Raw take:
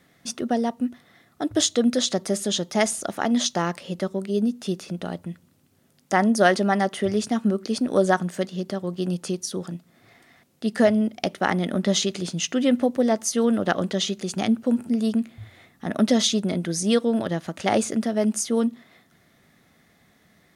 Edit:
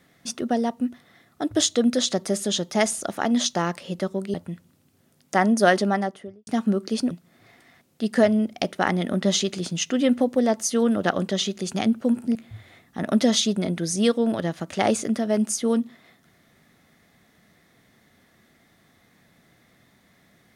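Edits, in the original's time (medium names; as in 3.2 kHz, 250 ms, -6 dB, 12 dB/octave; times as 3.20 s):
4.34–5.12 s: delete
6.55–7.25 s: studio fade out
7.89–9.73 s: delete
14.97–15.22 s: delete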